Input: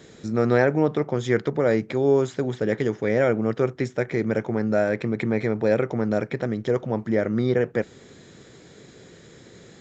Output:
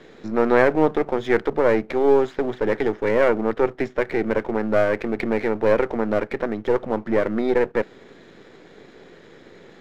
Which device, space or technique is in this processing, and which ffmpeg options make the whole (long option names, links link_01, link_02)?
crystal radio: -af "highpass=240,lowpass=2900,aeval=exprs='if(lt(val(0),0),0.447*val(0),val(0))':channel_layout=same,volume=6dB"